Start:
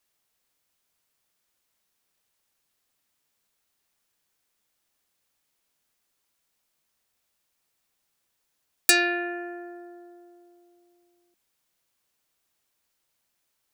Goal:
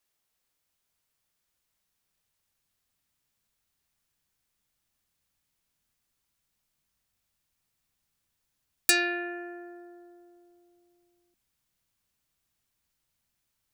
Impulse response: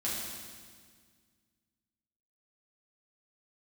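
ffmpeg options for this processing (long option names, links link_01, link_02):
-af "asubboost=boost=3.5:cutoff=210,volume=-3.5dB"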